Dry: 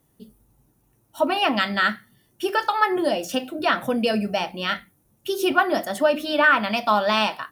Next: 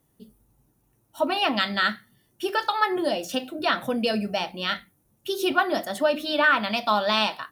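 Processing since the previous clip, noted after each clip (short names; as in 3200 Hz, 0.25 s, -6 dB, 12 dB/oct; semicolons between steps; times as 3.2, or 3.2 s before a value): dynamic EQ 3900 Hz, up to +8 dB, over -46 dBFS, Q 3.3; gain -3 dB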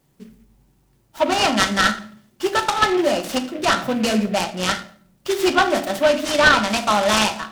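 shoebox room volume 830 m³, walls furnished, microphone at 1.1 m; noise-modulated delay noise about 1900 Hz, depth 0.047 ms; gain +4.5 dB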